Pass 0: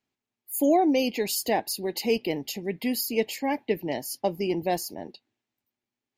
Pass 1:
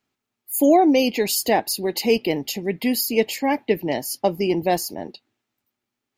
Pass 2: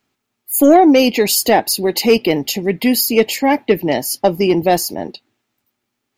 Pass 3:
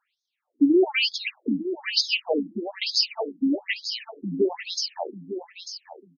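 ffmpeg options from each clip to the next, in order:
ffmpeg -i in.wav -af "equalizer=frequency=1300:width=5.2:gain=6,volume=6dB" out.wav
ffmpeg -i in.wav -af "acontrast=52,volume=1.5dB" out.wav
ffmpeg -i in.wav -af "lowshelf=frequency=290:gain=-9,aecho=1:1:894|1788|2682:0.316|0.0569|0.0102,afftfilt=real='re*between(b*sr/1024,210*pow(4800/210,0.5+0.5*sin(2*PI*1.1*pts/sr))/1.41,210*pow(4800/210,0.5+0.5*sin(2*PI*1.1*pts/sr))*1.41)':imag='im*between(b*sr/1024,210*pow(4800/210,0.5+0.5*sin(2*PI*1.1*pts/sr))/1.41,210*pow(4800/210,0.5+0.5*sin(2*PI*1.1*pts/sr))*1.41)':win_size=1024:overlap=0.75" out.wav

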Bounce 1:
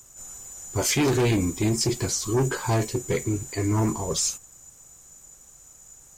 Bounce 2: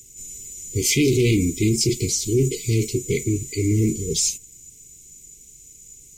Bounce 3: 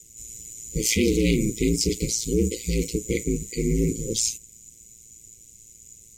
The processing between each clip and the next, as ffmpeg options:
ffmpeg -i in.wav -af "afftfilt=real='re*(1-between(b*sr/4096,480,2000))':imag='im*(1-between(b*sr/4096,480,2000))':win_size=4096:overlap=0.75,volume=4dB" out.wav
ffmpeg -i in.wav -af "aeval=exprs='val(0)*sin(2*PI*57*n/s)':channel_layout=same" out.wav

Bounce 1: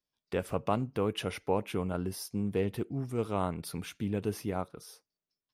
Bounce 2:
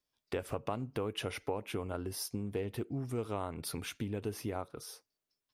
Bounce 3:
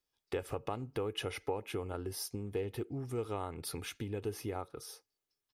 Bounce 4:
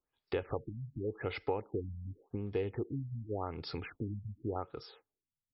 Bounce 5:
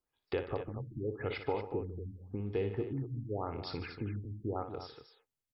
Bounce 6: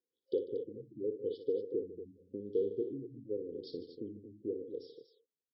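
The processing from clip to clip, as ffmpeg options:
ffmpeg -i in.wav -af "acompressor=threshold=-35dB:ratio=6,equalizer=frequency=180:width_type=o:width=0.24:gain=-12,volume=3dB" out.wav
ffmpeg -i in.wav -af "aecho=1:1:2.4:0.36,volume=-1.5dB" out.wav
ffmpeg -i in.wav -af "afftfilt=real='re*lt(b*sr/1024,210*pow(5600/210,0.5+0.5*sin(2*PI*0.88*pts/sr)))':imag='im*lt(b*sr/1024,210*pow(5600/210,0.5+0.5*sin(2*PI*0.88*pts/sr)))':win_size=1024:overlap=0.75,volume=2dB" out.wav
ffmpeg -i in.wav -af "aecho=1:1:58|149|236:0.335|0.188|0.299" out.wav
ffmpeg -i in.wav -af "afftfilt=real='re*(1-between(b*sr/4096,530,3000))':imag='im*(1-between(b*sr/4096,530,3000))':win_size=4096:overlap=0.75,highpass=380,lowpass=4700,highshelf=frequency=2300:width_type=q:width=3:gain=-7,volume=4dB" out.wav

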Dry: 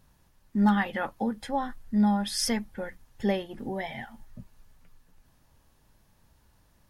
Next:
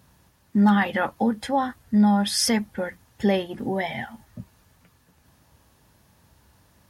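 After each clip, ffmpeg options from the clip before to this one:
ffmpeg -i in.wav -filter_complex "[0:a]highpass=frequency=60:width=0.5412,highpass=frequency=60:width=1.3066,asplit=2[link_01][link_02];[link_02]alimiter=limit=-20.5dB:level=0:latency=1:release=18,volume=2dB[link_03];[link_01][link_03]amix=inputs=2:normalize=0" out.wav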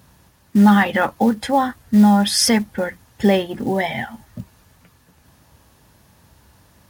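ffmpeg -i in.wav -af "acrusher=bits=7:mode=log:mix=0:aa=0.000001,volume=6dB" out.wav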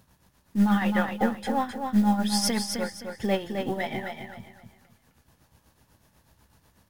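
ffmpeg -i in.wav -filter_complex "[0:a]aeval=exprs='if(lt(val(0),0),0.708*val(0),val(0))':channel_layout=same,tremolo=f=8.1:d=0.61,asplit=2[link_01][link_02];[link_02]aecho=0:1:261|522|783|1044:0.531|0.159|0.0478|0.0143[link_03];[link_01][link_03]amix=inputs=2:normalize=0,volume=-6dB" out.wav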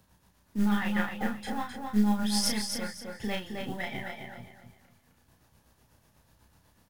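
ffmpeg -i in.wav -filter_complex "[0:a]acrossover=split=230|1000|3500[link_01][link_02][link_03][link_04];[link_02]acompressor=threshold=-39dB:ratio=6[link_05];[link_01][link_05][link_03][link_04]amix=inputs=4:normalize=0,aeval=exprs='0.237*(cos(1*acos(clip(val(0)/0.237,-1,1)))-cos(1*PI/2))+0.0668*(cos(2*acos(clip(val(0)/0.237,-1,1)))-cos(2*PI/2))':channel_layout=same,asplit=2[link_06][link_07];[link_07]adelay=33,volume=-3dB[link_08];[link_06][link_08]amix=inputs=2:normalize=0,volume=-4dB" out.wav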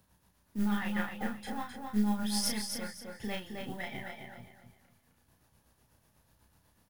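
ffmpeg -i in.wav -af "aexciter=amount=1.8:drive=1.6:freq=10000,volume=-4.5dB" out.wav

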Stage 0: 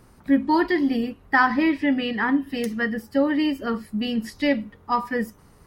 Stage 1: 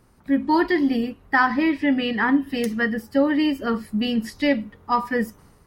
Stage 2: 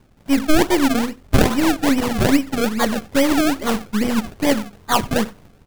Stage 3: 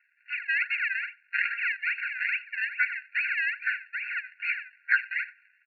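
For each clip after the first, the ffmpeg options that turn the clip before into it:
ffmpeg -i in.wav -af "dynaudnorm=framelen=140:gausssize=5:maxgain=8dB,volume=-5dB" out.wav
ffmpeg -i in.wav -filter_complex "[0:a]aeval=exprs='if(lt(val(0),0),0.447*val(0),val(0))':channel_layout=same,acrusher=samples=32:mix=1:aa=0.000001:lfo=1:lforange=32:lforate=2.4,asplit=2[link_01][link_02];[link_02]adelay=93.29,volume=-23dB,highshelf=frequency=4000:gain=-2.1[link_03];[link_01][link_03]amix=inputs=2:normalize=0,volume=6dB" out.wav
ffmpeg -i in.wav -af "afreqshift=370,aresample=8000,aresample=44100,afftfilt=real='re*eq(mod(floor(b*sr/1024/1400),2),1)':imag='im*eq(mod(floor(b*sr/1024/1400),2),1)':win_size=1024:overlap=0.75" out.wav

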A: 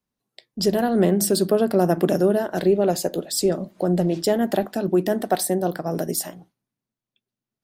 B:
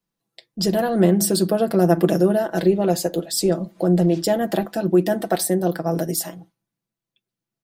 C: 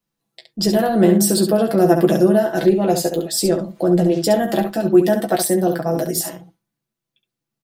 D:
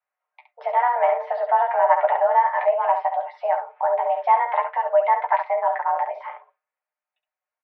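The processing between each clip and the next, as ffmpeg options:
ffmpeg -i in.wav -af "aecho=1:1:6:0.65" out.wav
ffmpeg -i in.wav -af "aecho=1:1:14|68:0.501|0.422,volume=1.5dB" out.wav
ffmpeg -i in.wav -af "highpass=frequency=410:width_type=q:width=0.5412,highpass=frequency=410:width_type=q:width=1.307,lowpass=frequency=2200:width_type=q:width=0.5176,lowpass=frequency=2200:width_type=q:width=0.7071,lowpass=frequency=2200:width_type=q:width=1.932,afreqshift=250" out.wav

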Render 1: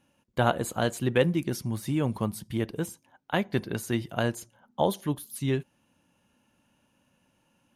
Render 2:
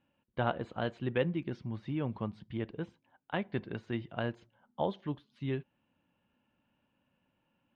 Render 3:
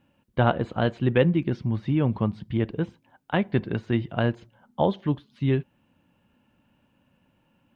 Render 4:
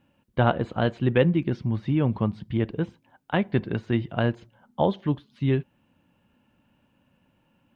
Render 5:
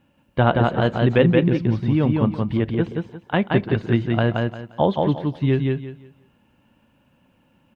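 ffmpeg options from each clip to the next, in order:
ffmpeg -i in.wav -af "lowpass=frequency=3400:width=0.5412,lowpass=frequency=3400:width=1.3066,volume=-7.5dB" out.wav
ffmpeg -i in.wav -af "lowshelf=frequency=280:gain=5.5,volume=8.5dB" out.wav
ffmpeg -i in.wav -af anull out.wav
ffmpeg -i in.wav -af "aecho=1:1:175|350|525|700:0.708|0.177|0.0442|0.0111,volume=3.5dB" out.wav

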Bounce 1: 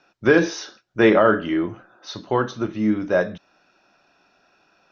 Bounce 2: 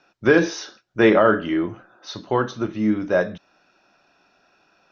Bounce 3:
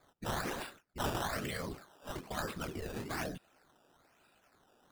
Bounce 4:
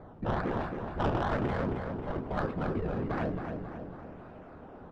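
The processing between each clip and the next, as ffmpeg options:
ffmpeg -i in.wav -af anull out.wav
ffmpeg -i in.wav -af "afftfilt=real='hypot(re,im)*cos(2*PI*random(0))':imag='hypot(re,im)*sin(2*PI*random(1))':win_size=512:overlap=0.75,afftfilt=real='re*lt(hypot(re,im),0.126)':imag='im*lt(hypot(re,im),0.126)':win_size=1024:overlap=0.75,acrusher=samples=14:mix=1:aa=0.000001:lfo=1:lforange=14:lforate=1.1,volume=-1dB" out.wav
ffmpeg -i in.wav -af "aeval=exprs='val(0)+0.5*0.00398*sgn(val(0))':channel_layout=same,aecho=1:1:271|542|813|1084|1355|1626|1897|2168:0.562|0.321|0.183|0.104|0.0594|0.0338|0.0193|0.011,adynamicsmooth=sensitivity=1.5:basefreq=800,volume=7dB" out.wav

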